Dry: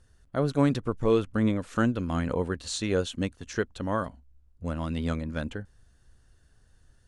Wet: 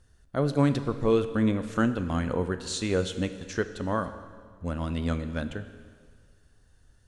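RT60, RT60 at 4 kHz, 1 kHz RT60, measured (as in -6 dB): 1.8 s, 1.7 s, 1.8 s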